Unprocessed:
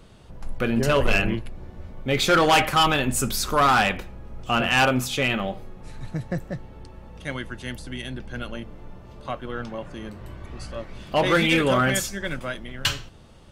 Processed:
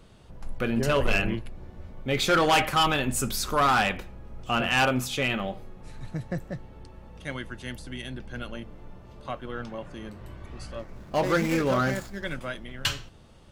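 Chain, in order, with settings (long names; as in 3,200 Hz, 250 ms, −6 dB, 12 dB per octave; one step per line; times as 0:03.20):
0:10.79–0:12.24: running median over 15 samples
level −3.5 dB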